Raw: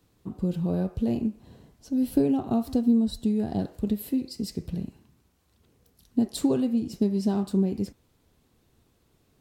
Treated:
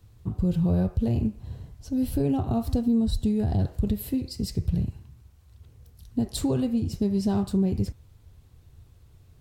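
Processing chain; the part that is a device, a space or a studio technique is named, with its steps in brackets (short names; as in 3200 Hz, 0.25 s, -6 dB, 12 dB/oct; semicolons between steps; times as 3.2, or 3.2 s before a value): car stereo with a boomy subwoofer (resonant low shelf 150 Hz +13 dB, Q 1.5; limiter -18 dBFS, peak gain reduction 10.5 dB); gain +2 dB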